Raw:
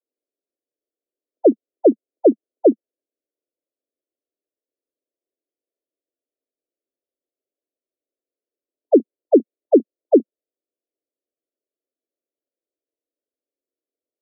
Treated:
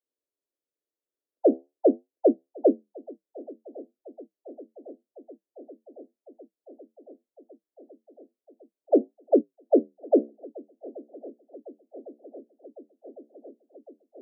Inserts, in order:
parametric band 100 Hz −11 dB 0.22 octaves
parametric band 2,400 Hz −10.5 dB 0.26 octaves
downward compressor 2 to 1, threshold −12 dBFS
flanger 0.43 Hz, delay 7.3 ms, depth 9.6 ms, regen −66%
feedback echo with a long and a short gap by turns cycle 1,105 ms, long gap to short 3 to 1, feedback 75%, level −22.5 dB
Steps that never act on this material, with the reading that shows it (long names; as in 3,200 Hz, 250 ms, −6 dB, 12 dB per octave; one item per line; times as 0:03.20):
parametric band 100 Hz: nothing at its input below 190 Hz
parametric band 2,400 Hz: nothing at its input above 810 Hz